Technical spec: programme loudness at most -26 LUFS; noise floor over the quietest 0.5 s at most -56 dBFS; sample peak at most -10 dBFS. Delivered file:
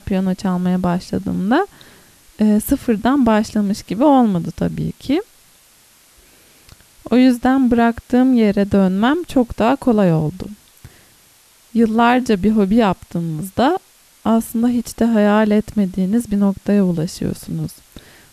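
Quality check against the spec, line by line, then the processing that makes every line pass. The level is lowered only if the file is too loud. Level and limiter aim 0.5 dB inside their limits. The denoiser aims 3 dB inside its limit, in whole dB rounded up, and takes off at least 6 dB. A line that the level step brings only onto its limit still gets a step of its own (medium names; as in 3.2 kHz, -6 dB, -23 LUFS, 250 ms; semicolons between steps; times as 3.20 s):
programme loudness -17.0 LUFS: fail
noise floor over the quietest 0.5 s -51 dBFS: fail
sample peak -3.0 dBFS: fail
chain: trim -9.5 dB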